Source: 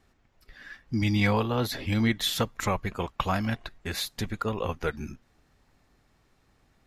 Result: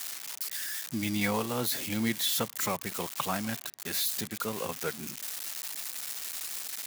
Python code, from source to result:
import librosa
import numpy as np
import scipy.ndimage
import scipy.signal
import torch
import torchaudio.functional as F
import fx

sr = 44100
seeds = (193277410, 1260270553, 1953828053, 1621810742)

y = x + 0.5 * 10.0 ** (-20.5 / 20.0) * np.diff(np.sign(x), prepend=np.sign(x[:1]))
y = scipy.signal.sosfilt(scipy.signal.butter(4, 130.0, 'highpass', fs=sr, output='sos'), y)
y = y * 10.0 ** (-4.5 / 20.0)